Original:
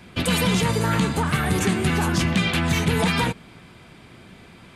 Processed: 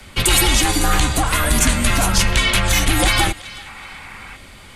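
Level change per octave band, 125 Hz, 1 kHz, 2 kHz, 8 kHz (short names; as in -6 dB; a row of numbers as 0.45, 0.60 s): +1.0, +5.0, +6.0, +13.0 dB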